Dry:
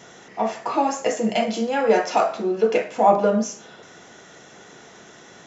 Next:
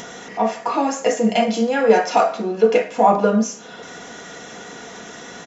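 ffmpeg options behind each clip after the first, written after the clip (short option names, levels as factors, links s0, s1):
-filter_complex "[0:a]aecho=1:1:4.2:0.41,asplit=2[s0][s1];[s1]acompressor=mode=upward:threshold=0.0631:ratio=2.5,volume=0.944[s2];[s0][s2]amix=inputs=2:normalize=0,volume=0.668"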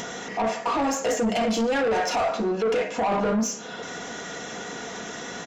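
-af "alimiter=limit=0.237:level=0:latency=1:release=12,asoftclip=type=tanh:threshold=0.0891,volume=1.19"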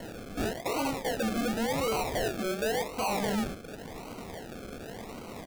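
-af "acrusher=samples=36:mix=1:aa=0.000001:lfo=1:lforange=21.6:lforate=0.91,volume=0.473"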